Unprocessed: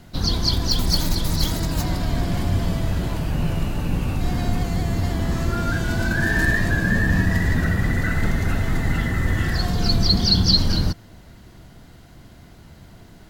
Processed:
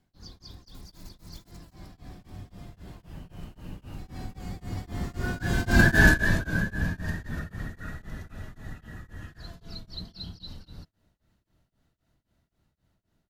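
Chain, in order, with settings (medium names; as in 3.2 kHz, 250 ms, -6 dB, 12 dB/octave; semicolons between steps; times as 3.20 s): Doppler pass-by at 5.91 s, 18 m/s, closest 2.9 m; tremolo of two beating tones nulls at 3.8 Hz; trim +7 dB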